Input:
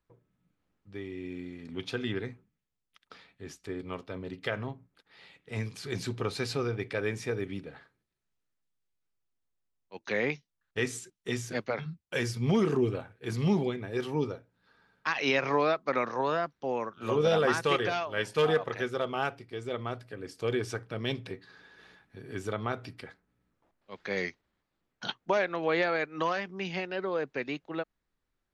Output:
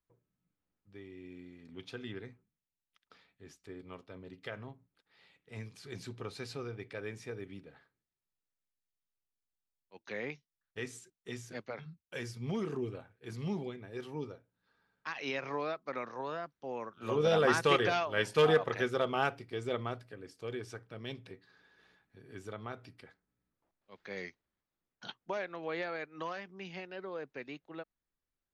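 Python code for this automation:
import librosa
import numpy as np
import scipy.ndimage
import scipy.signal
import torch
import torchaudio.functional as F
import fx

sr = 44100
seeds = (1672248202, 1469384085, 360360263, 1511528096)

y = fx.gain(x, sr, db=fx.line((16.55, -10.0), (17.57, 0.0), (19.73, 0.0), (20.38, -10.0)))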